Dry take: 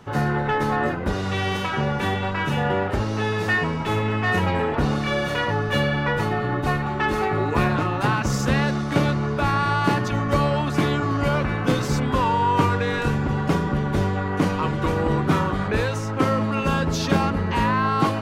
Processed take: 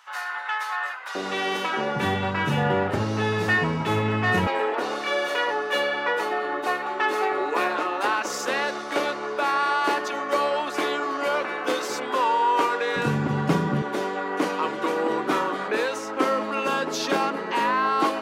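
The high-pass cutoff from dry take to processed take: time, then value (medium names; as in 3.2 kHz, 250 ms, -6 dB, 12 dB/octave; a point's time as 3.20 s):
high-pass 24 dB/octave
1 kHz
from 1.15 s 250 Hz
from 1.96 s 100 Hz
from 4.47 s 360 Hz
from 12.96 s 130 Hz
from 13.82 s 290 Hz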